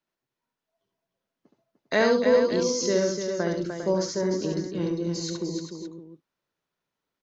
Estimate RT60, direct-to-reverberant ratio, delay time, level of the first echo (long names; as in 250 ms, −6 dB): no reverb audible, no reverb audible, 70 ms, −4.0 dB